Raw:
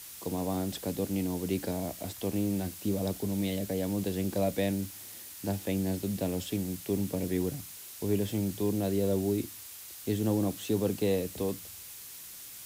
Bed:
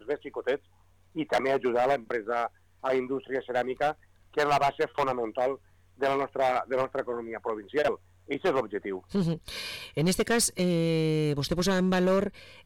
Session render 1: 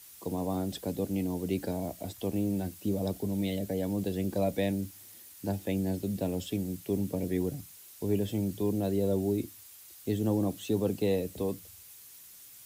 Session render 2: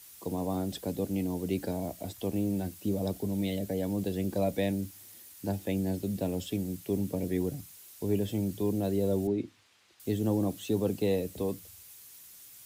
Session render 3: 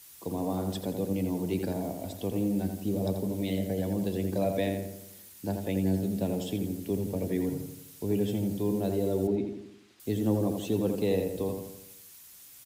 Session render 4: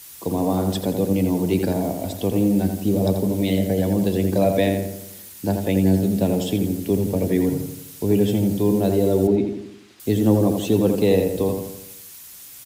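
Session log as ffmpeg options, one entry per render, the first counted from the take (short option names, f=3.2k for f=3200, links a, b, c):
-af "afftdn=nr=8:nf=-46"
-filter_complex "[0:a]asettb=1/sr,asplit=3[a][b][c];[a]atrim=end=9.274[d];[b]atrim=start=9.27:end=10,asetpts=PTS-STARTPTS,afade=t=in:d=0.004:c=qsin,afade=t=out:st=0.726:d=0.004:c=qsin,highpass=120,lowpass=3.3k[e];[c]atrim=start=9.996[f];[d][e]acrossfade=d=0.004:c1=hsin:c2=qsin[g];[g][f]acrossfade=d=0.004:c1=qsin:c2=hsin"
-filter_complex "[0:a]asplit=2[a][b];[b]adelay=84,lowpass=f=2.5k:p=1,volume=-5dB,asplit=2[c][d];[d]adelay=84,lowpass=f=2.5k:p=1,volume=0.52,asplit=2[e][f];[f]adelay=84,lowpass=f=2.5k:p=1,volume=0.52,asplit=2[g][h];[h]adelay=84,lowpass=f=2.5k:p=1,volume=0.52,asplit=2[i][j];[j]adelay=84,lowpass=f=2.5k:p=1,volume=0.52,asplit=2[k][l];[l]adelay=84,lowpass=f=2.5k:p=1,volume=0.52,asplit=2[m][n];[n]adelay=84,lowpass=f=2.5k:p=1,volume=0.52[o];[a][c][e][g][i][k][m][o]amix=inputs=8:normalize=0"
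-af "volume=10dB"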